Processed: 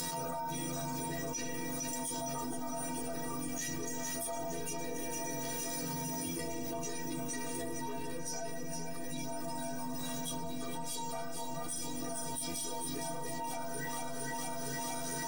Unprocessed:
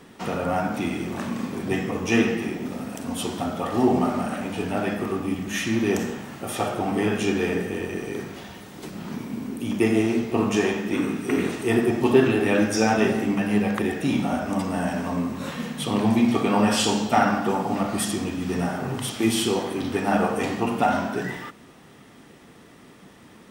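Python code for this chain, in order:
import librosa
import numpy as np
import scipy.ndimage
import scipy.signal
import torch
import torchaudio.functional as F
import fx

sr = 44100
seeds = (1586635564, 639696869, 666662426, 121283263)

p1 = fx.stretch_grains(x, sr, factor=0.65, grain_ms=28.0)
p2 = fx.robotise(p1, sr, hz=83.9)
p3 = 10.0 ** (-18.5 / 20.0) * np.tanh(p2 / 10.0 ** (-18.5 / 20.0))
p4 = fx.high_shelf_res(p3, sr, hz=3800.0, db=10.0, q=1.5)
p5 = fx.stiff_resonator(p4, sr, f0_hz=140.0, decay_s=0.63, stiffness=0.03)
p6 = p5 + fx.echo_feedback(p5, sr, ms=457, feedback_pct=60, wet_db=-8, dry=0)
y = fx.env_flatten(p6, sr, amount_pct=100)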